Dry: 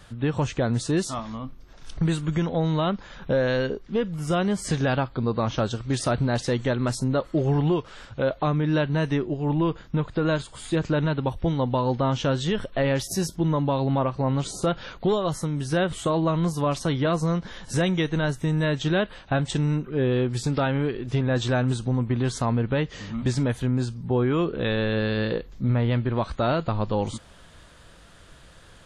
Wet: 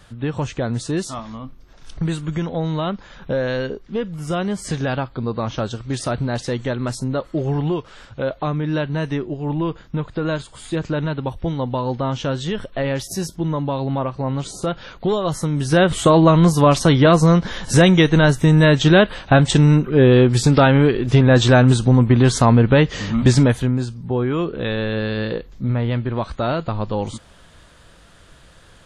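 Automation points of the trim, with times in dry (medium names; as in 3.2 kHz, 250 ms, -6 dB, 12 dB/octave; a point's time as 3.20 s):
14.89 s +1 dB
16.05 s +11 dB
23.39 s +11 dB
23.85 s +2 dB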